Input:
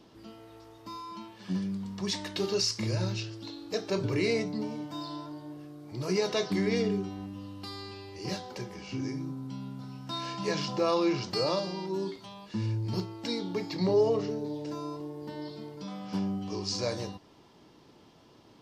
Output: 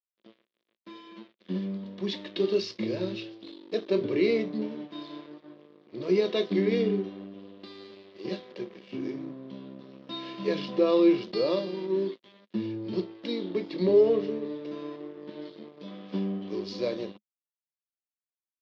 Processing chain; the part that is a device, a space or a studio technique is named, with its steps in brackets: blown loudspeaker (crossover distortion -44 dBFS; cabinet simulation 210–4000 Hz, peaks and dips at 210 Hz +8 dB, 360 Hz +10 dB, 530 Hz +6 dB, 830 Hz -9 dB, 1.4 kHz -6 dB, 3.5 kHz +5 dB)

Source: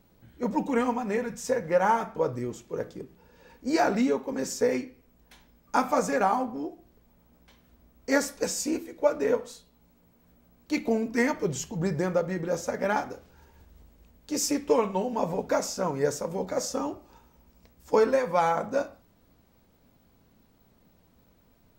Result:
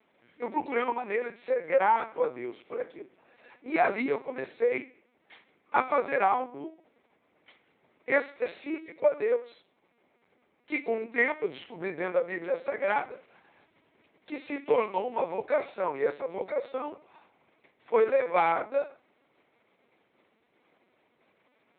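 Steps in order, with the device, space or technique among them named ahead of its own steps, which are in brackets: talking toy (LPC vocoder at 8 kHz pitch kept; high-pass 360 Hz 12 dB/octave; peaking EQ 2.2 kHz +9 dB 0.41 oct)

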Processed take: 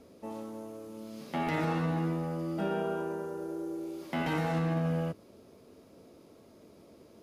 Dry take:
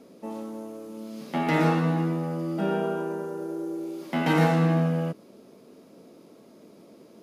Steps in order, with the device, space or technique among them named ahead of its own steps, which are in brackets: car stereo with a boomy subwoofer (resonant low shelf 120 Hz +12.5 dB, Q 1.5; peak limiter -19 dBFS, peak gain reduction 8.5 dB); trim -3.5 dB

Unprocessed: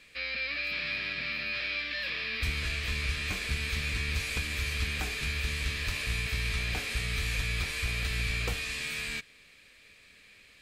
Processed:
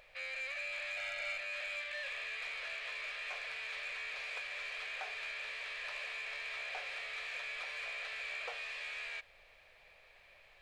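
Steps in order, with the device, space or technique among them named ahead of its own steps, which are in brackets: aircraft cabin announcement (band-pass 490–3200 Hz; saturation -29.5 dBFS, distortion -19 dB; brown noise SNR 14 dB); resonant low shelf 400 Hz -13.5 dB, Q 3; 0.97–1.38 s: comb 1.4 ms, depth 95%; trim -5 dB

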